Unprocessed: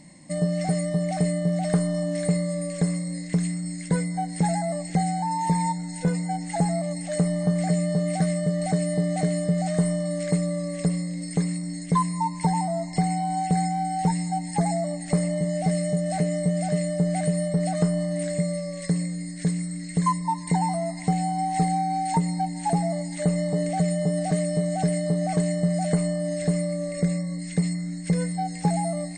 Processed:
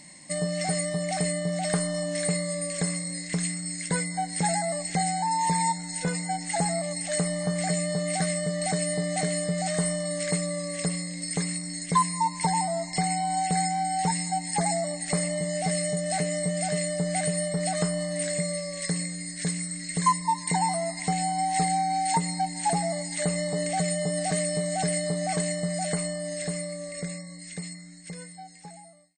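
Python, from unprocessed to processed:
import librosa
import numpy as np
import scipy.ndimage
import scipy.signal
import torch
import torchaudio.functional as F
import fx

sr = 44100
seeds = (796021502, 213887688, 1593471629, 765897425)

y = fx.fade_out_tail(x, sr, length_s=4.1)
y = fx.tilt_shelf(y, sr, db=-7.0, hz=780.0)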